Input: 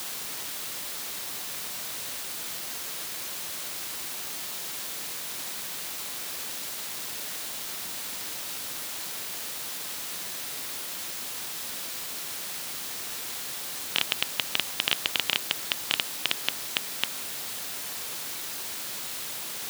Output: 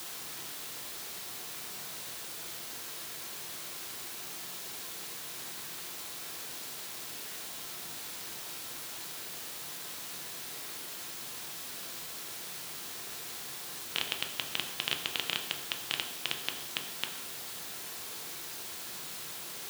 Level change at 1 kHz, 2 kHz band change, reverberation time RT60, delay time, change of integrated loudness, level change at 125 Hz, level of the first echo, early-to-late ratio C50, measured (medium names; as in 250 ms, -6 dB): -5.0 dB, -6.0 dB, 0.70 s, no echo, -6.5 dB, -3.0 dB, no echo, 8.5 dB